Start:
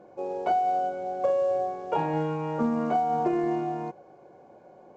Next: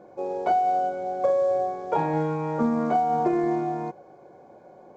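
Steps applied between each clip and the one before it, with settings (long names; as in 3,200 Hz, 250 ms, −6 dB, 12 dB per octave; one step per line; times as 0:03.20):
notch filter 2,800 Hz, Q 7.3
level +2.5 dB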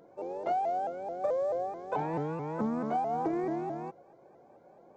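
pitch modulation by a square or saw wave saw up 4.6 Hz, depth 160 cents
level −8 dB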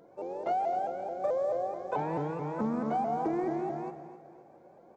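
repeating echo 260 ms, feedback 43%, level −13 dB
on a send at −12.5 dB: convolution reverb RT60 0.55 s, pre-delay 117 ms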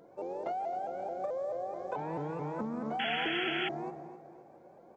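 downward compressor, threshold −33 dBFS, peak gain reduction 7 dB
sound drawn into the spectrogram noise, 0:02.99–0:03.69, 1,300–3,400 Hz −35 dBFS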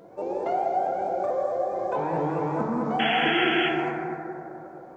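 dense smooth reverb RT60 2.7 s, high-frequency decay 0.25×, DRR 0.5 dB
level +7 dB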